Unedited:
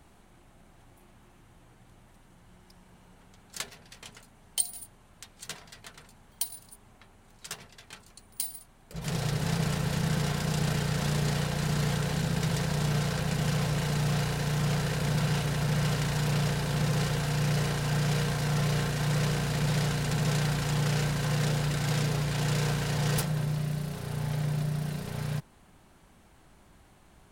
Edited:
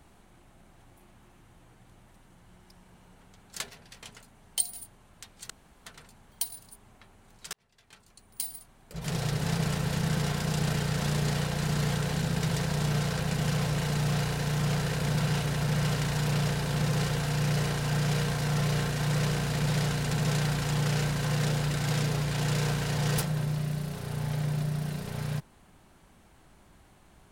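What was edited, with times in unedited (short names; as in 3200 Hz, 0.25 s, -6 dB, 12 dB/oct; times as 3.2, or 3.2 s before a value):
5.5–5.86 room tone
7.53–8.54 fade in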